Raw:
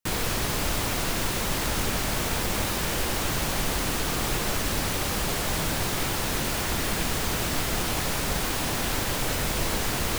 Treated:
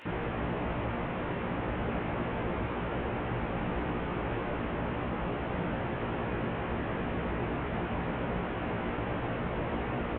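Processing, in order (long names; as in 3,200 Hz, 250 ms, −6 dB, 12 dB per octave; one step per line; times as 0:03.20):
linear delta modulator 16 kbit/s, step −40.5 dBFS
high-pass filter 110 Hz 6 dB per octave
double-tracking delay 17 ms −2 dB
on a send: convolution reverb RT60 4.3 s, pre-delay 142 ms, DRR 11 dB
on the sum: level −3 dB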